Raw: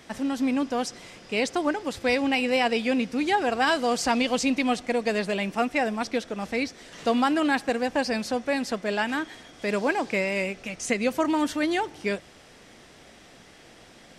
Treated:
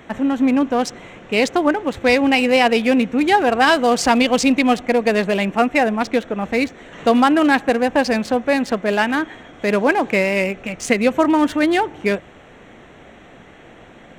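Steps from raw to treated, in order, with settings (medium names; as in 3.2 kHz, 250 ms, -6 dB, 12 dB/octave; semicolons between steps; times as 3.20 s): local Wiener filter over 9 samples; trim +9 dB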